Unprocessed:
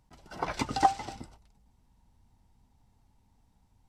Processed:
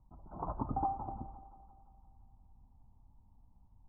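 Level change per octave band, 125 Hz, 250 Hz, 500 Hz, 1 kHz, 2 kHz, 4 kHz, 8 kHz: -0.5 dB, -5.0 dB, -8.0 dB, -8.5 dB, under -30 dB, under -40 dB, under -30 dB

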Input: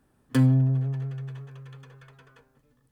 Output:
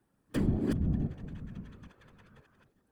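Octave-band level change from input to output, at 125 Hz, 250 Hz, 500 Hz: -11.0, -5.0, -0.5 dB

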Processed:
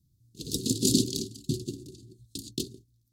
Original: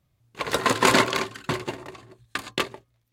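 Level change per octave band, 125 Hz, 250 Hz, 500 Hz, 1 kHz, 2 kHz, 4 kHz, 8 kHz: +1.5 dB, 0.0 dB, -10.0 dB, under -40 dB, under -30 dB, -4.5 dB, +1.5 dB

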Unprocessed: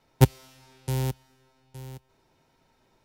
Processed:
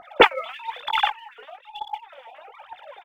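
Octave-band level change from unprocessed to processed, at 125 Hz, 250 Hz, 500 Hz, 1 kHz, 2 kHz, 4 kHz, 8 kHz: under -25 dB, n/a, +9.5 dB, +16.0 dB, +19.0 dB, +15.5 dB, under -10 dB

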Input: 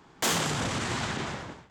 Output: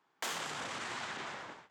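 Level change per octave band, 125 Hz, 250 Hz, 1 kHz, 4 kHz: -22.0, -17.0, -8.0, -10.0 dB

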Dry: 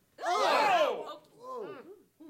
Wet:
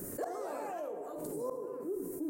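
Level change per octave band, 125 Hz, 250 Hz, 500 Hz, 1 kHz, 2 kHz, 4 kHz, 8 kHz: n/a, +5.0 dB, -5.0 dB, -13.5 dB, -19.5 dB, under -25 dB, -1.5 dB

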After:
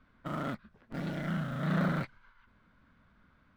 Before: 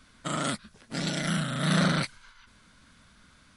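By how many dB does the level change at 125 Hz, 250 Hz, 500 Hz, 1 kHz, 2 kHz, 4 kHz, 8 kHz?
-4.5 dB, -4.5 dB, -5.0 dB, -6.0 dB, -8.0 dB, -18.0 dB, under -20 dB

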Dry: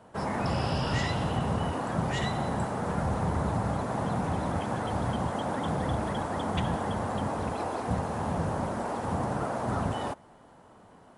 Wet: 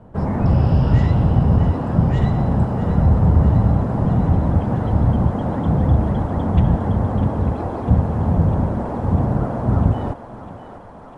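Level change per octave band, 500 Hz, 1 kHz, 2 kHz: +6.5, +3.5, -1.0 dB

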